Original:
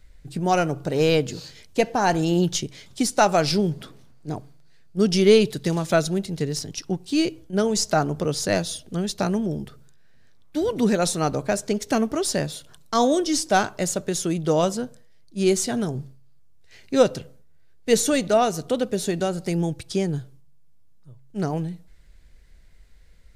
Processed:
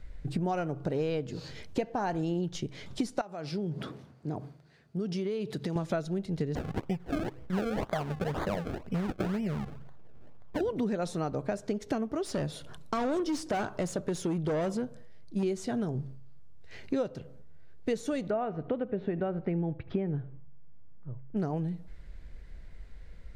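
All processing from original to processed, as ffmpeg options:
-filter_complex "[0:a]asettb=1/sr,asplit=3[s0][s1][s2];[s0]atrim=end=3.214[s3];[s1]atrim=start=3.21:end=5.76,asetpts=PTS-STARTPTS,afade=t=in:d=0.004:c=qsin,afade=t=out:st=2.546:d=0.004:c=qsin,acompressor=threshold=0.0158:ratio=3:attack=3.2:release=140:knee=1:detection=peak,highpass=98[s4];[s2]atrim=start=5.756[s5];[s3][s4]acrossfade=d=0.004:c1=hsin:c2=qsin[s6];[s6][s5]acrossfade=d=0.004:c1=qsin:c2=hsin,asettb=1/sr,asplit=3[s7][s8][s9];[s7]atrim=end=6.554[s10];[s8]atrim=start=6.55:end=10.61,asetpts=PTS-STARTPTS,afade=t=in:d=0.004:c=qsin,afade=t=out:st=4.056:d=0.004:c=qsin,equalizer=f=320:w=4.5:g=-14.5,acrusher=samples=32:mix=1:aa=0.000001:lfo=1:lforange=32:lforate=2[s11];[s9]atrim=start=10.606[s12];[s10][s11]acrossfade=d=0.004:c1=hsin:c2=qsin[s13];[s13][s12]acrossfade=d=0.004:c1=qsin:c2=hsin,asettb=1/sr,asplit=3[s14][s15][s16];[s14]atrim=end=12.234[s17];[s15]atrim=start=12.23:end=15.43,asetpts=PTS-STARTPTS,afade=t=in:d=0.004:c=qsin,afade=t=out:st=3.196:d=0.004:c=qsin,equalizer=f=10000:w=5:g=4,asoftclip=type=hard:threshold=0.0841[s18];[s16]atrim=start=15.426[s19];[s17][s18]acrossfade=d=0.004:c1=hsin:c2=qsin[s20];[s20][s19]acrossfade=d=0.004:c1=qsin:c2=hsin,asettb=1/sr,asplit=3[s21][s22][s23];[s21]atrim=end=18.304[s24];[s22]atrim=start=18.3:end=21.37,asetpts=PTS-STARTPTS,afade=t=in:d=0.004:c=qsin,afade=t=out:st=3.066:d=0.004:c=qsin,lowpass=f=2500:w=0.5412,lowpass=f=2500:w=1.3066,aecho=1:1:77:0.0841,atrim=end_sample=135387[s25];[s23]atrim=start=21.366[s26];[s24][s25]acrossfade=d=0.004:c1=hsin:c2=qsin[s27];[s27][s26]acrossfade=d=0.004:c1=qsin:c2=hsin,highshelf=f=6600:g=-9.5,acompressor=threshold=0.0178:ratio=6,highshelf=f=2400:g=-8.5,volume=2"

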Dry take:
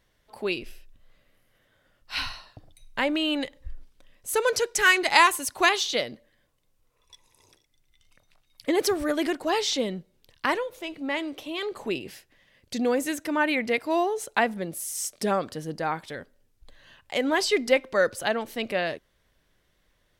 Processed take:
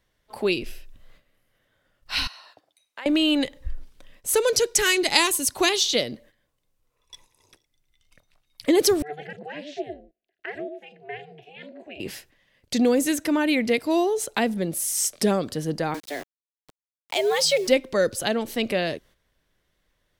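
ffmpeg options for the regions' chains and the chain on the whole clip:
-filter_complex "[0:a]asettb=1/sr,asplit=3[s0][s1][s2];[s0]atrim=end=2.274[s3];[s1]atrim=start=2.27:end=3.06,asetpts=PTS-STARTPTS,afade=t=in:d=0.004:c=qsin,afade=t=out:st=0.786:d=0.004:c=qsin,highpass=530,highshelf=f=5700:g=-2.5,acompressor=threshold=0.002:ratio=2:attack=3.2:release=140:knee=1:detection=peak[s4];[s2]atrim=start=3.056[s5];[s3][s4]acrossfade=d=0.004:c1=hsin:c2=qsin[s6];[s6][s5]acrossfade=d=0.004:c1=qsin:c2=hsin,asettb=1/sr,asplit=3[s7][s8][s9];[s7]atrim=end=9.024[s10];[s8]atrim=start=9.02:end=12,asetpts=PTS-STARTPTS,afade=t=in:d=0.004:c=qsin,afade=t=out:st=2.976:d=0.004:c=qsin,asplit=3[s11][s12][s13];[s11]bandpass=f=530:t=q:w=8,volume=1[s14];[s12]bandpass=f=1840:t=q:w=8,volume=0.501[s15];[s13]bandpass=f=2480:t=q:w=8,volume=0.355[s16];[s14][s15][s16]amix=inputs=3:normalize=0,acrossover=split=420|3900[s17][s18][s19];[s19]adelay=40[s20];[s17]adelay=100[s21];[s21][s18][s20]amix=inputs=3:normalize=0,atrim=end_sample=131418,aeval=exprs='val(0)*sin(2*PI*150*n/s)':c=same[s22];[s9]atrim=start=11.996[s23];[s10][s22]acrossfade=d=0.004:c1=hsin:c2=qsin[s24];[s24][s23]acrossfade=d=0.004:c1=qsin:c2=hsin,asettb=1/sr,asplit=3[s25][s26][s27];[s25]atrim=end=15.944[s28];[s26]atrim=start=15.94:end=17.68,asetpts=PTS-STARTPTS,afade=t=in:d=0.004:c=qsin,afade=t=out:st=1.736:d=0.004:c=qsin,equalizer=f=1000:t=o:w=0.39:g=-3.5,afreqshift=140,aeval=exprs='val(0)*gte(abs(val(0)),0.00891)':c=same[s29];[s27]atrim=start=17.676[s30];[s28][s29]acrossfade=d=0.004:c1=hsin:c2=qsin[s31];[s31][s30]acrossfade=d=0.004:c1=qsin:c2=hsin,acrossover=split=490|3000[s32][s33][s34];[s33]acompressor=threshold=0.01:ratio=3[s35];[s32][s35][s34]amix=inputs=3:normalize=0,agate=range=0.316:threshold=0.00126:ratio=16:detection=peak,volume=2.24"

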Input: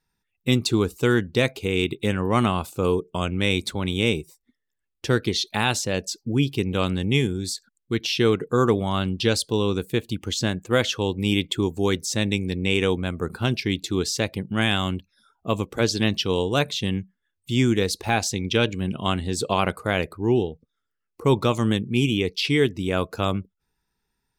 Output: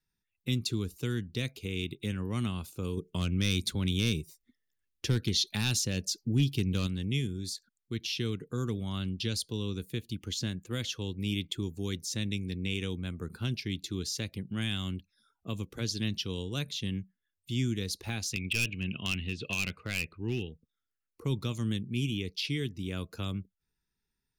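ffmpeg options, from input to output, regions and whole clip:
-filter_complex "[0:a]asettb=1/sr,asplit=3[s0][s1][s2];[s0]atrim=end=2.974[s3];[s1]atrim=start=2.97:end=6.87,asetpts=PTS-STARTPTS,afade=t=in:d=0.004:c=qsin,afade=t=out:st=3.896:d=0.004:c=qsin,acontrast=52,asoftclip=type=hard:threshold=0.422[s4];[s2]atrim=start=6.866[s5];[s3][s4]acrossfade=d=0.004:c1=hsin:c2=qsin[s6];[s6][s5]acrossfade=d=0.004:c1=qsin:c2=hsin,asettb=1/sr,asplit=3[s7][s8][s9];[s7]atrim=end=18.334[s10];[s8]atrim=start=18.33:end=20.49,asetpts=PTS-STARTPTS,afade=t=in:d=0.004:c=qsin,afade=t=out:st=2.156:d=0.004:c=qsin,lowpass=f=2600:t=q:w=8.8,asoftclip=type=hard:threshold=0.251[s11];[s9]atrim=start=20.486[s12];[s10][s11]acrossfade=d=0.004:c1=hsin:c2=qsin[s13];[s13][s12]acrossfade=d=0.004:c1=qsin:c2=hsin,equalizer=f=770:t=o:w=1.4:g=-9,bandreject=f=7900:w=7.7,acrossover=split=240|3000[s14][s15][s16];[s15]acompressor=threshold=0.0178:ratio=2.5[s17];[s14][s17][s16]amix=inputs=3:normalize=0,volume=0.447"

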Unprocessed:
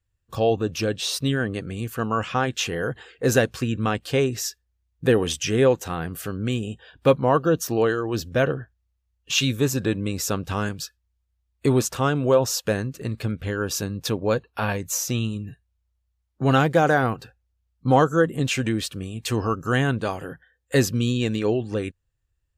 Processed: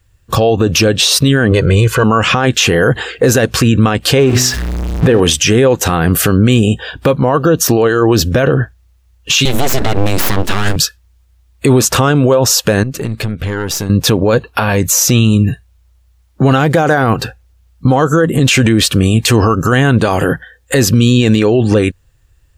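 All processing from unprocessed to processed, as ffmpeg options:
-filter_complex "[0:a]asettb=1/sr,asplit=3[s0][s1][s2];[s0]atrim=end=1.514[s3];[s1]atrim=start=1.51:end=2.04,asetpts=PTS-STARTPTS,afade=t=in:d=0.004:c=qsin,afade=t=out:st=0.526:d=0.004:c=qsin,adynamicsmooth=sensitivity=3.5:basefreq=7000,aecho=1:1:2:0.83,atrim=end_sample=23373[s4];[s2]atrim=start=2.036[s5];[s3][s4]acrossfade=d=0.004:c1=hsin:c2=qsin[s6];[s6][s5]acrossfade=d=0.004:c1=qsin:c2=hsin,asettb=1/sr,asplit=3[s7][s8][s9];[s7]atrim=end=4.184[s10];[s8]atrim=start=4.18:end=5.2,asetpts=PTS-STARTPTS,afade=t=in:d=0.004:c=qsin,afade=t=out:st=1.016:d=0.004:c=qsin,aeval=exprs='val(0)+0.5*0.02*sgn(val(0))':c=same,lowpass=f=2700:p=1,bandreject=f=125.2:t=h:w=4,bandreject=f=250.4:t=h:w=4,bandreject=f=375.6:t=h:w=4,bandreject=f=500.8:t=h:w=4,bandreject=f=626:t=h:w=4,bandreject=f=751.2:t=h:w=4,bandreject=f=876.4:t=h:w=4,bandreject=f=1001.6:t=h:w=4,bandreject=f=1126.8:t=h:w=4,bandreject=f=1252:t=h:w=4,bandreject=f=1377.2:t=h:w=4,bandreject=f=1502.4:t=h:w=4,bandreject=f=1627.6:t=h:w=4,bandreject=f=1752.8:t=h:w=4,bandreject=f=1878:t=h:w=4,bandreject=f=2003.2:t=h:w=4,bandreject=f=2128.4:t=h:w=4,bandreject=f=2253.6:t=h:w=4,bandreject=f=2378.8:t=h:w=4,bandreject=f=2504:t=h:w=4,bandreject=f=2629.2:t=h:w=4,bandreject=f=2754.4:t=h:w=4,bandreject=f=2879.6:t=h:w=4,bandreject=f=3004.8:t=h:w=4,bandreject=f=3130:t=h:w=4,bandreject=f=3255.2:t=h:w=4,bandreject=f=3380.4:t=h:w=4,bandreject=f=3505.6:t=h:w=4,bandreject=f=3630.8:t=h:w=4,bandreject=f=3756:t=h:w=4,bandreject=f=3881.2:t=h:w=4,bandreject=f=4006.4:t=h:w=4,bandreject=f=4131.6:t=h:w=4,bandreject=f=4256.8:t=h:w=4,bandreject=f=4382:t=h:w=4,bandreject=f=4507.2:t=h:w=4,bandreject=f=4632.4:t=h:w=4[s11];[s9]atrim=start=5.196[s12];[s10][s11]acrossfade=d=0.004:c1=hsin:c2=qsin[s13];[s13][s12]acrossfade=d=0.004:c1=qsin:c2=hsin,asettb=1/sr,asplit=3[s14][s15][s16];[s14]atrim=end=9.454[s17];[s15]atrim=start=9.45:end=10.76,asetpts=PTS-STARTPTS,afade=t=in:d=0.004:c=qsin,afade=t=out:st=1.306:d=0.004:c=qsin,bandreject=f=60:t=h:w=6,bandreject=f=120:t=h:w=6,bandreject=f=180:t=h:w=6,aeval=exprs='abs(val(0))':c=same[s18];[s16]atrim=start=10.756[s19];[s17][s18]acrossfade=d=0.004:c1=hsin:c2=qsin[s20];[s20][s19]acrossfade=d=0.004:c1=qsin:c2=hsin,asettb=1/sr,asplit=3[s21][s22][s23];[s21]atrim=end=12.834[s24];[s22]atrim=start=12.83:end=13.9,asetpts=PTS-STARTPTS,afade=t=in:d=0.004:c=qsin,afade=t=out:st=1.066:d=0.004:c=qsin,aeval=exprs='(tanh(7.94*val(0)+0.65)-tanh(0.65))/7.94':c=same,acompressor=threshold=0.0112:ratio=4:attack=3.2:release=140:knee=1:detection=peak[s25];[s23]atrim=start=13.896[s26];[s24][s25]acrossfade=d=0.004:c1=hsin:c2=qsin[s27];[s27][s26]acrossfade=d=0.004:c1=qsin:c2=hsin,acompressor=threshold=0.0794:ratio=6,alimiter=level_in=15.8:limit=0.891:release=50:level=0:latency=1,volume=0.891"

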